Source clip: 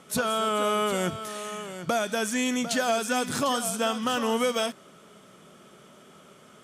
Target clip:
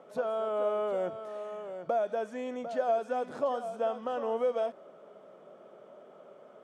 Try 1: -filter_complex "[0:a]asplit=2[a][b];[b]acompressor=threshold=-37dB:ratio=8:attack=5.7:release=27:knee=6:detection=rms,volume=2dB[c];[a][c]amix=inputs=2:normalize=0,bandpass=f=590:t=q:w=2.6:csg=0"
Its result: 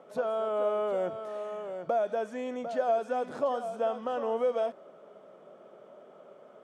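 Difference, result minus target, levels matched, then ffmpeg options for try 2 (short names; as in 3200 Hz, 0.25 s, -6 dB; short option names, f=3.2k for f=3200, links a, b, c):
compressor: peak gain reduction -8 dB
-filter_complex "[0:a]asplit=2[a][b];[b]acompressor=threshold=-46dB:ratio=8:attack=5.7:release=27:knee=6:detection=rms,volume=2dB[c];[a][c]amix=inputs=2:normalize=0,bandpass=f=590:t=q:w=2.6:csg=0"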